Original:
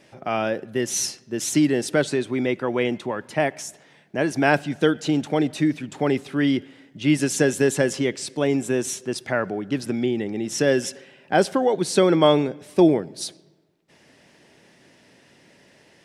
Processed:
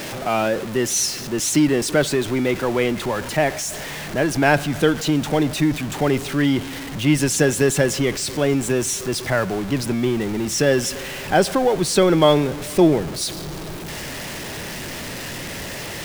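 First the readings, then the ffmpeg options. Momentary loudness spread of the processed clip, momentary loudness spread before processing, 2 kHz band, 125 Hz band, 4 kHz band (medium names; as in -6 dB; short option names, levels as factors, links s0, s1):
12 LU, 9 LU, +3.5 dB, +5.5 dB, +5.5 dB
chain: -af "aeval=exprs='val(0)+0.5*0.0422*sgn(val(0))':c=same,asubboost=boost=2.5:cutoff=130,volume=1.26"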